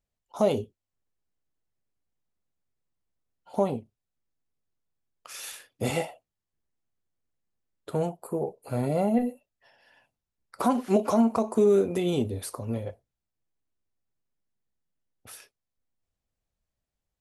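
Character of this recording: noise floor -87 dBFS; spectral tilt -6.0 dB/octave

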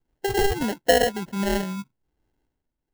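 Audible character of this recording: tremolo triangle 0.99 Hz, depth 65%; phasing stages 8, 1.4 Hz, lowest notch 570–3100 Hz; aliases and images of a low sample rate 1.2 kHz, jitter 0%

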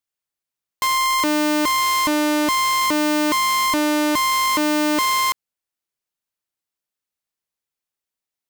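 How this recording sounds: noise floor -88 dBFS; spectral tilt -2.0 dB/octave

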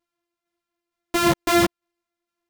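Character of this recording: a buzz of ramps at a fixed pitch in blocks of 128 samples; tremolo saw down 2.2 Hz, depth 40%; a shimmering, thickened sound

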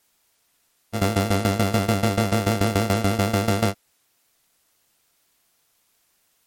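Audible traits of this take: a buzz of ramps at a fixed pitch in blocks of 64 samples; tremolo saw down 6.9 Hz, depth 85%; a quantiser's noise floor 12-bit, dither triangular; MP3

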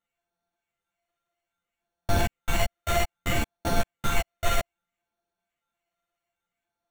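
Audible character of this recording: a buzz of ramps at a fixed pitch in blocks of 64 samples; phasing stages 6, 0.62 Hz, lowest notch 250–2300 Hz; aliases and images of a low sample rate 5 kHz, jitter 0%; a shimmering, thickened sound

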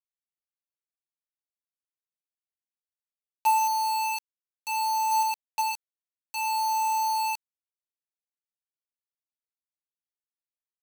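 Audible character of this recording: tremolo triangle 0.62 Hz, depth 100%; a quantiser's noise floor 6-bit, dither none

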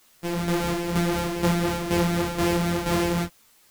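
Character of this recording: a buzz of ramps at a fixed pitch in blocks of 256 samples; tremolo saw down 2.1 Hz, depth 60%; a quantiser's noise floor 10-bit, dither triangular; a shimmering, thickened sound

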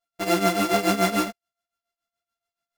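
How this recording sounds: a buzz of ramps at a fixed pitch in blocks of 64 samples; tremolo triangle 7 Hz, depth 85%; a shimmering, thickened sound

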